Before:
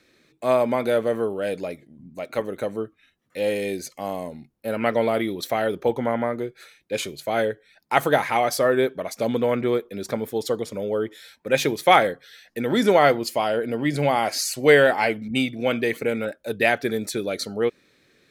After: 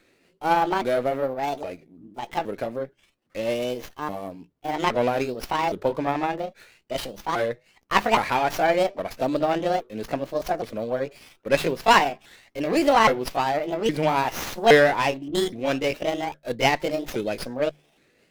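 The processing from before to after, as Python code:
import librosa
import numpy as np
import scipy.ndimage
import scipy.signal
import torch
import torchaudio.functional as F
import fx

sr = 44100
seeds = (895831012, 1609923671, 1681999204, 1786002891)

y = fx.pitch_ramps(x, sr, semitones=7.5, every_ms=817)
y = fx.hum_notches(y, sr, base_hz=50, count=3)
y = fx.running_max(y, sr, window=5)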